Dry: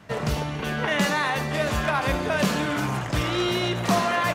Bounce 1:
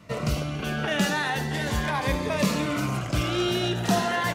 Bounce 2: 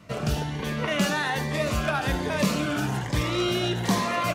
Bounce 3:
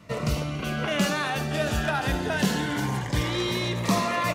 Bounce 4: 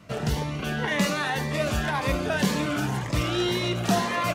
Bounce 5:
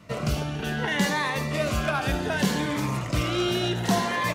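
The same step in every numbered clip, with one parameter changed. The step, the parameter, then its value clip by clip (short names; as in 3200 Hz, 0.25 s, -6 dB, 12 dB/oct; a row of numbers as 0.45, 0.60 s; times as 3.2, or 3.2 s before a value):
cascading phaser, rate: 0.38, 1.2, 0.23, 1.9, 0.66 Hz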